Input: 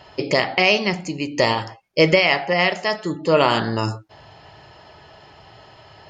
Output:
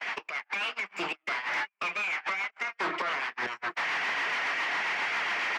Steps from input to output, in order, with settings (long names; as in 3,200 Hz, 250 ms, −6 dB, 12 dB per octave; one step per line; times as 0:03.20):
lower of the sound and its delayed copy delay 0.42 ms
gate with flip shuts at −13 dBFS, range −32 dB
graphic EQ with 10 bands 125 Hz −6 dB, 250 Hz −11 dB, 500 Hz −9 dB, 1,000 Hz +12 dB, 2,000 Hz +8 dB, 4,000 Hz −6 dB
reversed playback
downward compressor 6 to 1, threshold −38 dBFS, peak gain reduction 17.5 dB
reversed playback
rotating-speaker cabinet horn 6.7 Hz
on a send: single-tap delay 903 ms −21.5 dB
on the sum: mid-hump overdrive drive 36 dB, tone 2,900 Hz, clips at −21 dBFS
noise gate −33 dBFS, range −35 dB
change of speed 1.09×
three-way crossover with the lows and the highs turned down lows −22 dB, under 200 Hz, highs −16 dB, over 5,500 Hz